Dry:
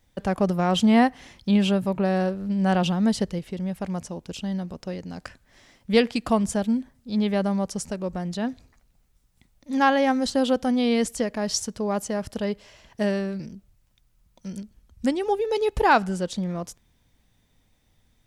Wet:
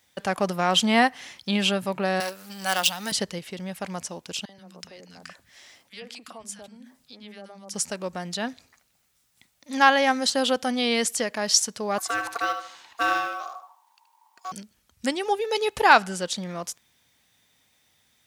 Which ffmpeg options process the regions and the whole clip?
ffmpeg -i in.wav -filter_complex "[0:a]asettb=1/sr,asplit=3[link_01][link_02][link_03];[link_01]atrim=end=2.204[link_04];[link_02]atrim=start=2.2:end=3.12,asetpts=PTS-STARTPTS,afade=type=in:duration=0.004:curve=qsin,afade=type=out:start_time=0.916:duration=0.004:curve=qsin,aeval=exprs='if(lt(val(0),0),0.447*val(0),val(0))':channel_layout=same,aemphasis=mode=production:type=riaa[link_05];[link_03]atrim=start=3.116[link_06];[link_04][link_05]acrossfade=duration=0.004:curve1=hsin:curve2=qsin[link_07];[link_07][link_06]acrossfade=duration=0.004:curve1=qsin:curve2=hsin,asettb=1/sr,asplit=3[link_08][link_09][link_10];[link_08]atrim=end=4.454[link_11];[link_09]atrim=start=4.45:end=7.74,asetpts=PTS-STARTPTS,afade=type=in:duration=0.004:curve=qsin,afade=type=out:start_time=3.286:duration=0.004:curve=qsin,acompressor=threshold=-38dB:ratio=5:attack=3.2:release=140:knee=1:detection=peak,acrossover=split=220|1300[link_12][link_13][link_14];[link_13]adelay=40[link_15];[link_12]adelay=130[link_16];[link_16][link_15][link_14]amix=inputs=3:normalize=0,atrim=end_sample=145089[link_17];[link_10]atrim=start=7.736[link_18];[link_11][link_17]acrossfade=duration=0.004:curve1=hsin:curve2=qsin[link_19];[link_19][link_18]acrossfade=duration=0.004:curve1=qsin:curve2=hsin,asettb=1/sr,asplit=3[link_20][link_21][link_22];[link_20]atrim=end=11.984[link_23];[link_21]atrim=start=11.98:end=14.52,asetpts=PTS-STARTPTS,afade=type=in:duration=0.004:curve=qsin,afade=type=out:start_time=2.536:duration=0.004:curve=qsin,asplit=2[link_24][link_25];[link_25]adelay=75,lowpass=frequency=4900:poles=1,volume=-7.5dB,asplit=2[link_26][link_27];[link_27]adelay=75,lowpass=frequency=4900:poles=1,volume=0.33,asplit=2[link_28][link_29];[link_29]adelay=75,lowpass=frequency=4900:poles=1,volume=0.33,asplit=2[link_30][link_31];[link_31]adelay=75,lowpass=frequency=4900:poles=1,volume=0.33[link_32];[link_24][link_26][link_28][link_30][link_32]amix=inputs=5:normalize=0,atrim=end_sample=112014,acrusher=bits=9:mode=log:mix=0:aa=0.000001,aeval=exprs='val(0)*sin(2*PI*930*n/s)':channel_layout=same[link_33];[link_22]atrim=start=14.516[link_34];[link_23][link_33]acrossfade=duration=0.004:curve1=hsin:curve2=qsin[link_35];[link_35][link_34]acrossfade=duration=0.004:curve1=qsin:curve2=hsin,highpass=97,tiltshelf=frequency=640:gain=-7.5,bandreject=frequency=990:width=29" out.wav

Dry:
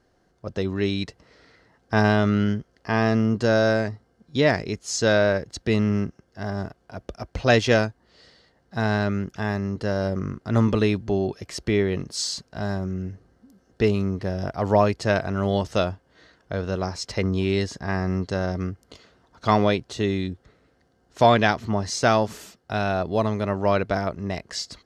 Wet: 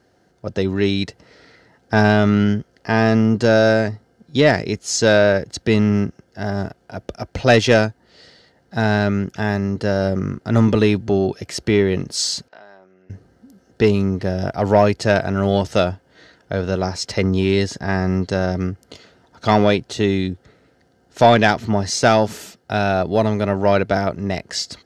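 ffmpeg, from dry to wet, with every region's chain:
ffmpeg -i in.wav -filter_complex "[0:a]asettb=1/sr,asplit=3[link_01][link_02][link_03];[link_01]atrim=end=12.484[link_04];[link_02]atrim=start=12.48:end=13.1,asetpts=PTS-STARTPTS,afade=type=in:duration=0.004:curve=qsin,afade=type=out:start_time=0.616:duration=0.004:curve=qsin,acompressor=threshold=-40dB:ratio=12:attack=3.2:release=140:knee=1:detection=peak,highpass=570,lowpass=3400[link_05];[link_03]atrim=start=13.096[link_06];[link_04][link_05]acrossfade=duration=0.004:curve1=hsin:curve2=qsin[link_07];[link_07][link_06]acrossfade=duration=0.004:curve1=qsin:curve2=hsin,highpass=76,bandreject=frequency=1100:width=6.3,acontrast=64" out.wav

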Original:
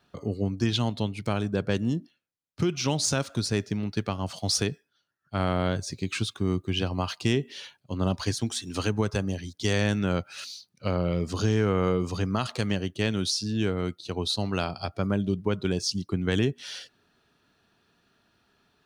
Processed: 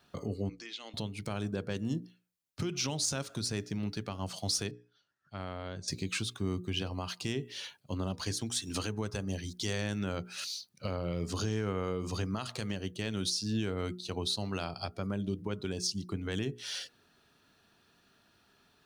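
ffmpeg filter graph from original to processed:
ffmpeg -i in.wav -filter_complex "[0:a]asettb=1/sr,asplit=3[link_01][link_02][link_03];[link_01]atrim=end=0.494[link_04];[link_02]atrim=start=0.49:end=0.94,asetpts=PTS-STARTPTS,afade=type=in:duration=0.004:curve=qsin,afade=type=out:start_time=0.446:duration=0.004:curve=qsin,highpass=frequency=380:width=0.5412,highpass=frequency=380:width=1.3066,equalizer=frequency=400:width_type=q:width=4:gain=-8,equalizer=frequency=660:width_type=q:width=4:gain=-9,equalizer=frequency=950:width_type=q:width=4:gain=-10,equalizer=frequency=1500:width_type=q:width=4:gain=-4,equalizer=frequency=2100:width_type=q:width=4:gain=9,equalizer=frequency=5900:width_type=q:width=4:gain=-3,lowpass=frequency=7100:width=0.5412,lowpass=frequency=7100:width=1.3066,acompressor=threshold=-44dB:ratio=3:attack=3.2:release=140:knee=1:detection=peak[link_05];[link_03]atrim=start=0.936[link_06];[link_04][link_05]acrossfade=duration=0.004:curve1=hsin:curve2=qsin[link_07];[link_07][link_06]acrossfade=duration=0.004:curve1=qsin:curve2=hsin,asettb=1/sr,asplit=3[link_08][link_09][link_10];[link_08]atrim=end=4.714[link_11];[link_09]atrim=start=4.71:end=5.88,asetpts=PTS-STARTPTS,afade=type=in:duration=0.004:curve=qsin,afade=type=out:start_time=1.166:duration=0.004:curve=qsin,lowpass=5700,acompressor=threshold=-59dB:ratio=1.5:attack=3.2:release=140:knee=1:detection=peak[link_12];[link_10]atrim=start=5.876[link_13];[link_11][link_12]acrossfade=duration=0.004:curve1=hsin:curve2=qsin[link_14];[link_14][link_13]acrossfade=duration=0.004:curve1=qsin:curve2=hsin,alimiter=limit=-23.5dB:level=0:latency=1:release=381,highshelf=frequency=5600:gain=6,bandreject=frequency=60:width_type=h:width=6,bandreject=frequency=120:width_type=h:width=6,bandreject=frequency=180:width_type=h:width=6,bandreject=frequency=240:width_type=h:width=6,bandreject=frequency=300:width_type=h:width=6,bandreject=frequency=360:width_type=h:width=6,bandreject=frequency=420:width_type=h:width=6,bandreject=frequency=480:width_type=h:width=6" out.wav

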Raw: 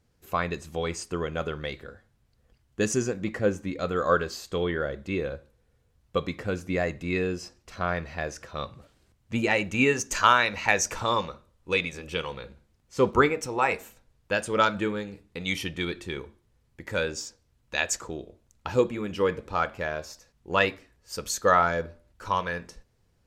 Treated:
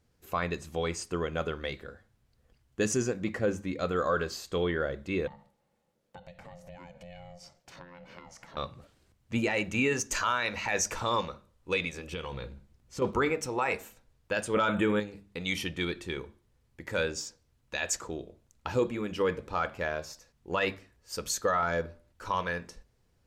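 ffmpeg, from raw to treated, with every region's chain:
ffmpeg -i in.wav -filter_complex "[0:a]asettb=1/sr,asplit=3[link_01][link_02][link_03];[link_01]atrim=end=5.274[link_04];[link_02]atrim=start=5.27:end=8.57,asetpts=PTS-STARTPTS,afade=type=in:duration=0.004:curve=qsin,afade=type=out:start_time=3.296:duration=0.004:curve=qsin,lowshelf=frequency=120:width_type=q:width=3:gain=-12,acompressor=threshold=-41dB:ratio=6:attack=3.2:release=140:knee=1:detection=peak,aeval=exprs='val(0)*sin(2*PI*350*n/s)':channel_layout=same[link_05];[link_03]atrim=start=8.566[link_06];[link_04][link_05]acrossfade=duration=0.004:curve1=hsin:curve2=qsin[link_07];[link_07][link_06]acrossfade=duration=0.004:curve1=qsin:curve2=hsin,asettb=1/sr,asplit=3[link_08][link_09][link_10];[link_08]atrim=end=12.134[link_11];[link_09]atrim=start=12.13:end=13.02,asetpts=PTS-STARTPTS,afade=type=in:duration=0.004:curve=qsin,afade=type=out:start_time=0.886:duration=0.004:curve=qsin,lowshelf=frequency=250:gain=7,asplit=2[link_12][link_13];[link_13]adelay=15,volume=-13dB[link_14];[link_12][link_14]amix=inputs=2:normalize=0,atrim=end_sample=39249,acompressor=threshold=-31dB:ratio=5:attack=3.2:release=140:knee=1:detection=peak[link_15];[link_10]atrim=start=13.016[link_16];[link_11][link_15]acrossfade=duration=0.004:curve1=hsin:curve2=qsin[link_17];[link_17][link_16]acrossfade=duration=0.004:curve1=qsin:curve2=hsin,asettb=1/sr,asplit=3[link_18][link_19][link_20];[link_18]atrim=end=14.544[link_21];[link_19]atrim=start=14.54:end=15,asetpts=PTS-STARTPTS,afade=type=in:duration=0.004:curve=qsin,afade=type=out:start_time=0.456:duration=0.004:curve=qsin,asuperstop=centerf=5100:order=8:qfactor=1.6,acontrast=49[link_22];[link_20]atrim=start=14.996[link_23];[link_21][link_22]acrossfade=duration=0.004:curve1=hsin:curve2=qsin[link_24];[link_24][link_23]acrossfade=duration=0.004:curve1=qsin:curve2=hsin,bandreject=frequency=50:width_type=h:width=6,bandreject=frequency=100:width_type=h:width=6,bandreject=frequency=150:width_type=h:width=6,bandreject=frequency=200:width_type=h:width=6,alimiter=limit=-16.5dB:level=0:latency=1:release=11,volume=-1.5dB" out.wav

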